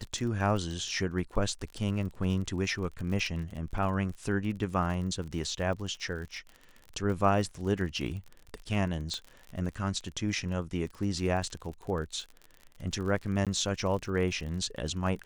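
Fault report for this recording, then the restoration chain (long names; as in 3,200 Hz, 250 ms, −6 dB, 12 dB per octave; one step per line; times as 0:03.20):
surface crackle 40 per second −37 dBFS
0:09.14: click −22 dBFS
0:13.45–0:13.47: drop-out 17 ms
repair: click removal
repair the gap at 0:13.45, 17 ms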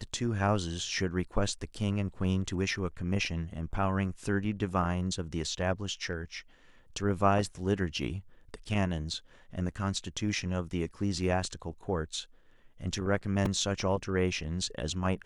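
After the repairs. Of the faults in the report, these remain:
0:09.14: click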